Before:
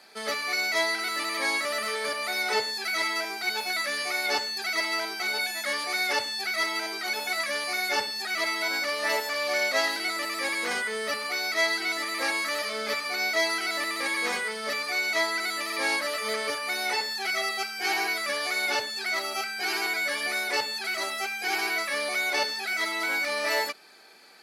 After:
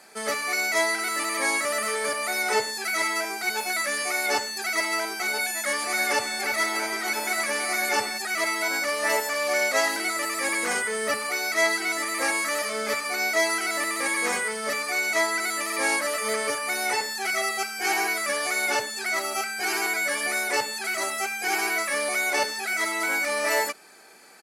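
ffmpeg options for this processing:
-filter_complex "[0:a]asplit=3[s0][s1][s2];[s0]afade=t=out:st=5.81:d=0.02[s3];[s1]asplit=2[s4][s5];[s5]adelay=327,lowpass=f=3200:p=1,volume=0.447,asplit=2[s6][s7];[s7]adelay=327,lowpass=f=3200:p=1,volume=0.47,asplit=2[s8][s9];[s9]adelay=327,lowpass=f=3200:p=1,volume=0.47,asplit=2[s10][s11];[s11]adelay=327,lowpass=f=3200:p=1,volume=0.47,asplit=2[s12][s13];[s13]adelay=327,lowpass=f=3200:p=1,volume=0.47,asplit=2[s14][s15];[s15]adelay=327,lowpass=f=3200:p=1,volume=0.47[s16];[s4][s6][s8][s10][s12][s14][s16]amix=inputs=7:normalize=0,afade=t=in:st=5.81:d=0.02,afade=t=out:st=8.17:d=0.02[s17];[s2]afade=t=in:st=8.17:d=0.02[s18];[s3][s17][s18]amix=inputs=3:normalize=0,asplit=3[s19][s20][s21];[s19]afade=t=out:st=9.71:d=0.02[s22];[s20]aphaser=in_gain=1:out_gain=1:delay=2.4:decay=0.21:speed=1.8:type=sinusoidal,afade=t=in:st=9.71:d=0.02,afade=t=out:st=11.78:d=0.02[s23];[s21]afade=t=in:st=11.78:d=0.02[s24];[s22][s23][s24]amix=inputs=3:normalize=0,equalizer=f=125:t=o:w=1:g=3,equalizer=f=4000:t=o:w=1:g=-9,equalizer=f=8000:t=o:w=1:g=8,volume=1.5"

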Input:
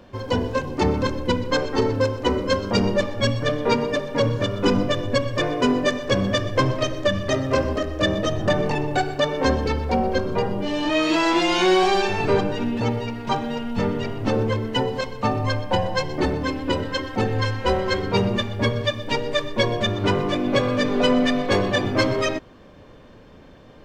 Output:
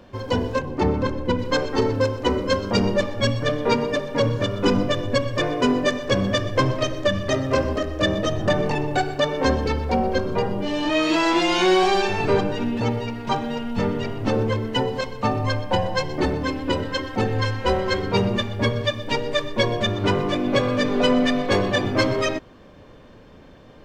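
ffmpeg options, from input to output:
-filter_complex "[0:a]asettb=1/sr,asplit=3[s0][s1][s2];[s0]atrim=end=0.594[s3];[s1]atrim=start=0.59:end=1.39,asetpts=PTS-STARTPTS,afade=t=in:d=0.004:c=qsin,afade=t=out:st=0.796:d=0.004:c=qsin,highshelf=f=3200:g=-10[s4];[s2]atrim=start=1.386[s5];[s3][s4]acrossfade=d=0.004:c1=hsin:c2=qsin[s6];[s6][s5]acrossfade=d=0.004:c1=qsin:c2=hsin"

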